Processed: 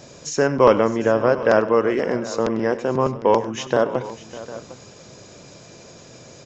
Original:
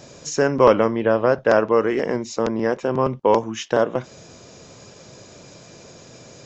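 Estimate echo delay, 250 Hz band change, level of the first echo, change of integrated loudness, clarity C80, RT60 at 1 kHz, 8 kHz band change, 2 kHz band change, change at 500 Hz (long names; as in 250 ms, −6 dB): 99 ms, +0.5 dB, −16.5 dB, 0.0 dB, no reverb audible, no reverb audible, can't be measured, 0.0 dB, 0.0 dB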